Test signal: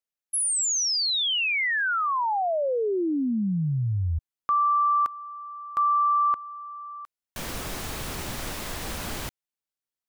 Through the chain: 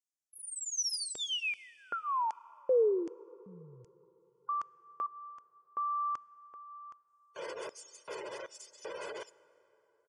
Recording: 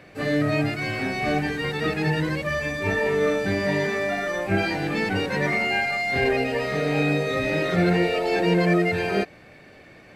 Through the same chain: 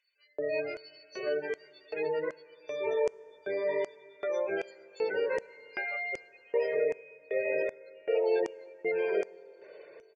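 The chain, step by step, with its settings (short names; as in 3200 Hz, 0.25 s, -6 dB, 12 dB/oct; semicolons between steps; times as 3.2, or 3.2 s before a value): tracing distortion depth 0.043 ms; spectral gate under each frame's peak -20 dB strong; comb 2 ms, depth 98%; compressor 1.5:1, threshold -29 dBFS; LFO high-pass square 1.3 Hz 450–6600 Hz; plate-style reverb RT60 3.8 s, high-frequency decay 0.55×, DRR 20 dB; downsampling 22050 Hz; Butterworth band-stop 3900 Hz, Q 5.2; gain -9 dB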